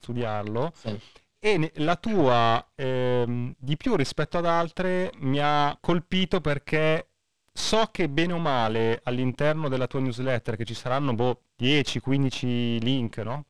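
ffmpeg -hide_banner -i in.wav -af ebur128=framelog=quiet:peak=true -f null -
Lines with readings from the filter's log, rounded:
Integrated loudness:
  I:         -25.9 LUFS
  Threshold: -36.1 LUFS
Loudness range:
  LRA:         1.4 LU
  Threshold: -46.0 LUFS
  LRA low:   -26.7 LUFS
  LRA high:  -25.3 LUFS
True peak:
  Peak:       -7.7 dBFS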